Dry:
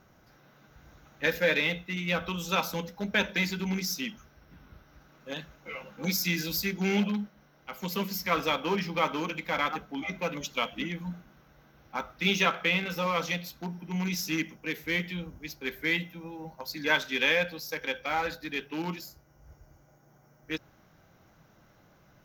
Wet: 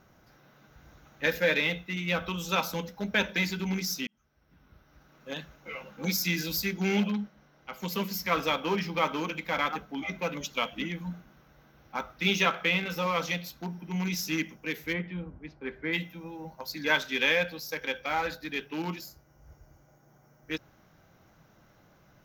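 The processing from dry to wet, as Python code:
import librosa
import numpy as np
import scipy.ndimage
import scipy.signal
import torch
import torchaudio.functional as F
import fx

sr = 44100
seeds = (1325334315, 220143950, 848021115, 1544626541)

y = fx.high_shelf(x, sr, hz=12000.0, db=-9.0, at=(7.11, 7.8))
y = fx.lowpass(y, sr, hz=1600.0, slope=12, at=(14.92, 15.92), fade=0.02)
y = fx.edit(y, sr, fx.fade_in_span(start_s=4.07, length_s=1.23), tone=tone)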